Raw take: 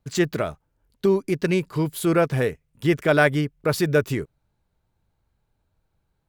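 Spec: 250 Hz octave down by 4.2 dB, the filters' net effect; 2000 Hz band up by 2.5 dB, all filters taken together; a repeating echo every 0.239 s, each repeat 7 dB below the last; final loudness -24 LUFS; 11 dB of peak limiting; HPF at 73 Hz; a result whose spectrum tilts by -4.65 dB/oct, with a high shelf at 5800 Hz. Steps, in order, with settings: HPF 73 Hz; bell 250 Hz -7.5 dB; bell 2000 Hz +3 dB; high shelf 5800 Hz +6.5 dB; limiter -12.5 dBFS; feedback echo 0.239 s, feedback 45%, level -7 dB; gain +1.5 dB

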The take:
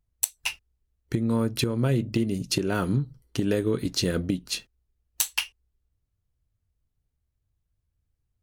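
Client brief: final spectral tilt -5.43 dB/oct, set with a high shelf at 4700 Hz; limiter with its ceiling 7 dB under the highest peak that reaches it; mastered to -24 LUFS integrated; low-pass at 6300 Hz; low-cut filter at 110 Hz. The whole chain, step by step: HPF 110 Hz; LPF 6300 Hz; high shelf 4700 Hz -6 dB; gain +6 dB; limiter -11 dBFS

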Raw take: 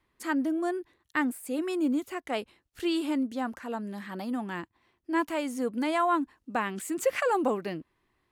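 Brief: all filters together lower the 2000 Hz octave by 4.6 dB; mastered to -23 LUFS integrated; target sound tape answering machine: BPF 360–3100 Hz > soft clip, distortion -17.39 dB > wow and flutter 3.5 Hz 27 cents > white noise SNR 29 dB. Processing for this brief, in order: BPF 360–3100 Hz; bell 2000 Hz -5 dB; soft clip -22 dBFS; wow and flutter 3.5 Hz 27 cents; white noise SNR 29 dB; gain +12 dB

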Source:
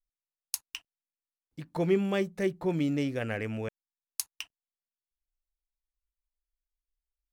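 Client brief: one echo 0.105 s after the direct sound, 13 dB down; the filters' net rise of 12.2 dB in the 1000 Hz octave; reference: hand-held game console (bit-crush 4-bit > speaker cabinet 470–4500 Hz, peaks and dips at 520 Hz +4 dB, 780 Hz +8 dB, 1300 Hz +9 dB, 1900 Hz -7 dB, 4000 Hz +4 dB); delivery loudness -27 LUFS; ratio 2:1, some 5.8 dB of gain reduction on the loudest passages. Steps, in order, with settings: bell 1000 Hz +8.5 dB; compressor 2:1, threshold -30 dBFS; echo 0.105 s -13 dB; bit-crush 4-bit; speaker cabinet 470–4500 Hz, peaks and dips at 520 Hz +4 dB, 780 Hz +8 dB, 1300 Hz +9 dB, 1900 Hz -7 dB, 4000 Hz +4 dB; gain +8 dB

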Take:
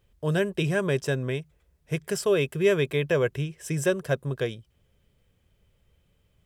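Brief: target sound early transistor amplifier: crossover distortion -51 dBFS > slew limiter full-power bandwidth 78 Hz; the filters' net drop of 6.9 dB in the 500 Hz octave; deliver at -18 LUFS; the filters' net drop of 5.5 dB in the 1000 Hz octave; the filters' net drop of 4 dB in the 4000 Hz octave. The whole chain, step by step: bell 500 Hz -8 dB; bell 1000 Hz -4.5 dB; bell 4000 Hz -5 dB; crossover distortion -51 dBFS; slew limiter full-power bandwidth 78 Hz; gain +13 dB

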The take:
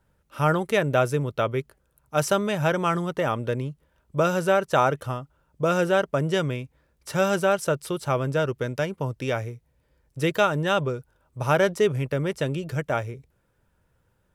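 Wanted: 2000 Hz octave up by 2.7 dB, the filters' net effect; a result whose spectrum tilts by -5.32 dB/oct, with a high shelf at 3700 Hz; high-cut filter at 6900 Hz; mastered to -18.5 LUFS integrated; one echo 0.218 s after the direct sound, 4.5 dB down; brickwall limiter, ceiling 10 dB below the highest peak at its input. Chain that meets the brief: LPF 6900 Hz; bell 2000 Hz +5 dB; high shelf 3700 Hz -4 dB; limiter -15.5 dBFS; echo 0.218 s -4.5 dB; gain +8 dB

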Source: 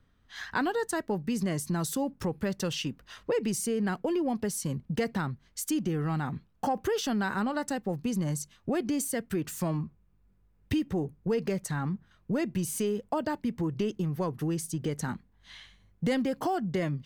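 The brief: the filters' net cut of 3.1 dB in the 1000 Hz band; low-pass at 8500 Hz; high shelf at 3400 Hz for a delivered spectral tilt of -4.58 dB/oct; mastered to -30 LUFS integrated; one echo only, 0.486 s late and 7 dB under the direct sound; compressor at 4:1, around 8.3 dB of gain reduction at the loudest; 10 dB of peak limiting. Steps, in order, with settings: LPF 8500 Hz; bell 1000 Hz -5 dB; high shelf 3400 Hz +8 dB; compressor 4:1, threshold -35 dBFS; limiter -30.5 dBFS; echo 0.486 s -7 dB; gain +9 dB

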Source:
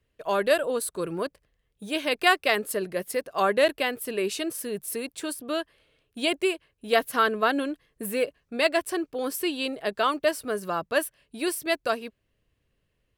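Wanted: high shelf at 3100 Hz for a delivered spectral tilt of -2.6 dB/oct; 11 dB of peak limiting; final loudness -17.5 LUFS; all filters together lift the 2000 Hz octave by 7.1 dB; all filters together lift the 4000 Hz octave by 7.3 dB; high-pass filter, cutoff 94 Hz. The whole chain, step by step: HPF 94 Hz; bell 2000 Hz +6.5 dB; high shelf 3100 Hz +4 dB; bell 4000 Hz +4 dB; gain +8 dB; limiter -2.5 dBFS

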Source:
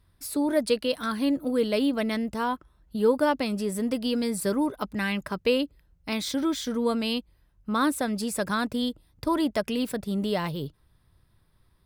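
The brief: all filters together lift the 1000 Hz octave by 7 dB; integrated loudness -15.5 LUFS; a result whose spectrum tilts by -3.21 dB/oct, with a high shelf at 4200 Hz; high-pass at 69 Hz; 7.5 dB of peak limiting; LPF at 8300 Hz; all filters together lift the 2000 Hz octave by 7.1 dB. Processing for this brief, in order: HPF 69 Hz; LPF 8300 Hz; bell 1000 Hz +6.5 dB; bell 2000 Hz +8.5 dB; high shelf 4200 Hz -6.5 dB; gain +11.5 dB; limiter -4.5 dBFS

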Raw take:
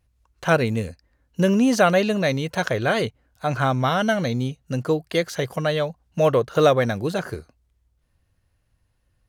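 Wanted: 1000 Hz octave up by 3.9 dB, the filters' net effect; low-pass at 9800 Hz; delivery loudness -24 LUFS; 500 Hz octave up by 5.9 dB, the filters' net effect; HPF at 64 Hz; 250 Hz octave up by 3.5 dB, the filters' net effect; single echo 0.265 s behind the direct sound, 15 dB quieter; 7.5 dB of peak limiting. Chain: HPF 64 Hz; LPF 9800 Hz; bell 250 Hz +3 dB; bell 500 Hz +5.5 dB; bell 1000 Hz +3 dB; limiter -7.5 dBFS; echo 0.265 s -15 dB; gain -4.5 dB

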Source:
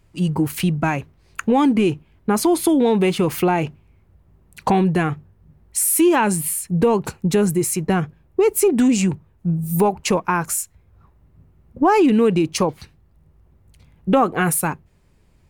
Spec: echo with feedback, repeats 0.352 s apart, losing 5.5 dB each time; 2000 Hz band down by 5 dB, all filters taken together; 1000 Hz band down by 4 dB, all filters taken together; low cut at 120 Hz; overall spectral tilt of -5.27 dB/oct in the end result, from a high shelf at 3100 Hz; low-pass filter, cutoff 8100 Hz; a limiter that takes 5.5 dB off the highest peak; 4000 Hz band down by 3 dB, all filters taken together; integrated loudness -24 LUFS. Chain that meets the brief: HPF 120 Hz; LPF 8100 Hz; bell 1000 Hz -4.5 dB; bell 2000 Hz -6 dB; high shelf 3100 Hz +7 dB; bell 4000 Hz -7 dB; limiter -11.5 dBFS; feedback echo 0.352 s, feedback 53%, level -5.5 dB; gain -3 dB

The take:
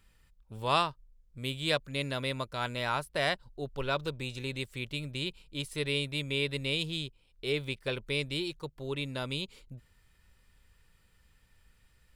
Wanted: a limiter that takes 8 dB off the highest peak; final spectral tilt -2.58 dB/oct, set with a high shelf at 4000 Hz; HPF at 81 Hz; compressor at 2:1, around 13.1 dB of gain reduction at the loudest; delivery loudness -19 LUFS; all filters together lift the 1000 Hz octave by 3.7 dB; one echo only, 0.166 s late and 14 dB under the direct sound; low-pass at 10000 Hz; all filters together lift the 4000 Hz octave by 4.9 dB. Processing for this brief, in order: HPF 81 Hz; LPF 10000 Hz; bell 1000 Hz +4.5 dB; high shelf 4000 Hz -5.5 dB; bell 4000 Hz +8.5 dB; compressor 2:1, threshold -42 dBFS; limiter -29 dBFS; echo 0.166 s -14 dB; gain +23.5 dB

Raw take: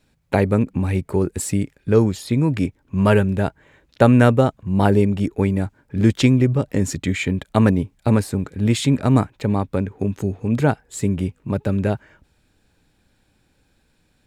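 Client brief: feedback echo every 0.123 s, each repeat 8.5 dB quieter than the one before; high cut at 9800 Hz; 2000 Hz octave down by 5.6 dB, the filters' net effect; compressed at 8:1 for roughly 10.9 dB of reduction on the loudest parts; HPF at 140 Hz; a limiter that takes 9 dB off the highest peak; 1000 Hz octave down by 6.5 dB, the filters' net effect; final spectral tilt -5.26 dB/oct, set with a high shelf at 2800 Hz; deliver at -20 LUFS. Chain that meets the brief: HPF 140 Hz; LPF 9800 Hz; bell 1000 Hz -8.5 dB; bell 2000 Hz -8 dB; high shelf 2800 Hz +8 dB; compressor 8:1, threshold -22 dBFS; limiter -18 dBFS; feedback echo 0.123 s, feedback 38%, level -8.5 dB; gain +9 dB

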